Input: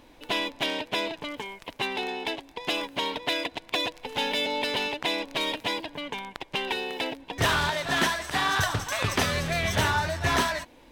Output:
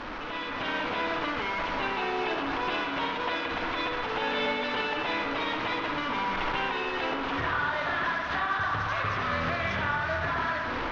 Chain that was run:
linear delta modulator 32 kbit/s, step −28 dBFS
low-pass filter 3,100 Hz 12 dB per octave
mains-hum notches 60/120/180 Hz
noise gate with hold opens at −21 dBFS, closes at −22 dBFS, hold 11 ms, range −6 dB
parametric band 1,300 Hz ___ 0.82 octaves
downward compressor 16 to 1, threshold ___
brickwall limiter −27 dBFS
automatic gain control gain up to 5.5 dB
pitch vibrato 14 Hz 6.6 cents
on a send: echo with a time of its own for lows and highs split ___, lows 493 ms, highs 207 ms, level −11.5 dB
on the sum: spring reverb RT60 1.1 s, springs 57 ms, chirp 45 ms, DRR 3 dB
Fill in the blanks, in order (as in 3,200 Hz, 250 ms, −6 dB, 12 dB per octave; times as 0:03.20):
+10 dB, −30 dBFS, 710 Hz